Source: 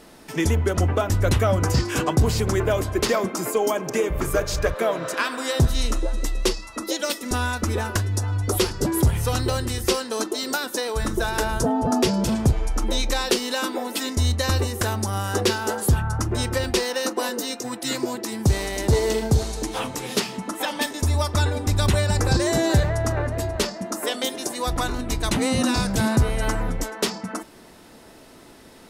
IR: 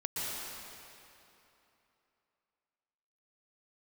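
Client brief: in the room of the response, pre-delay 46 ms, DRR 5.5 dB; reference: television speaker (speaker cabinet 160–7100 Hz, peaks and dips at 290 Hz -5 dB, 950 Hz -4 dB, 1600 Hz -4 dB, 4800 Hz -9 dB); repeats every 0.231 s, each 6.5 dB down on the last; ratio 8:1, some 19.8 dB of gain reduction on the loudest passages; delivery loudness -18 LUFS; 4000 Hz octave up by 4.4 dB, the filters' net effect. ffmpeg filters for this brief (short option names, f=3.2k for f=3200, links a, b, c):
-filter_complex "[0:a]equalizer=f=4k:t=o:g=8.5,acompressor=threshold=-35dB:ratio=8,aecho=1:1:231|462|693|924|1155|1386:0.473|0.222|0.105|0.0491|0.0231|0.0109,asplit=2[a][b];[1:a]atrim=start_sample=2205,adelay=46[c];[b][c]afir=irnorm=-1:irlink=0,volume=-10.5dB[d];[a][d]amix=inputs=2:normalize=0,highpass=f=160:w=0.5412,highpass=f=160:w=1.3066,equalizer=f=290:t=q:w=4:g=-5,equalizer=f=950:t=q:w=4:g=-4,equalizer=f=1.6k:t=q:w=4:g=-4,equalizer=f=4.8k:t=q:w=4:g=-9,lowpass=f=7.1k:w=0.5412,lowpass=f=7.1k:w=1.3066,volume=20.5dB"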